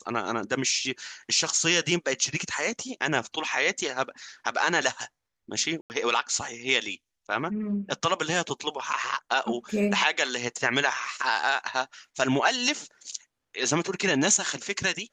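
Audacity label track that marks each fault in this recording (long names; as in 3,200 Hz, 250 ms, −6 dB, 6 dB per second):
5.810000	5.900000	drop-out 89 ms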